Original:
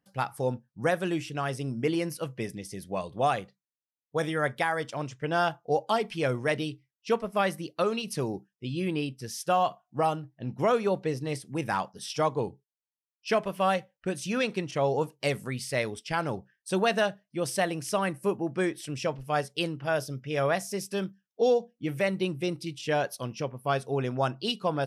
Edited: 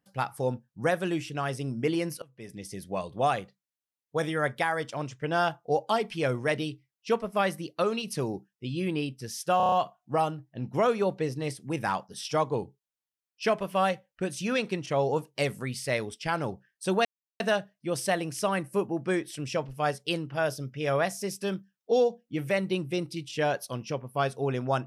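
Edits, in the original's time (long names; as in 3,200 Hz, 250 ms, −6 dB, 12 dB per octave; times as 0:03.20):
0:02.22–0:02.64: fade in quadratic, from −23 dB
0:09.57: stutter 0.03 s, 6 plays
0:16.90: splice in silence 0.35 s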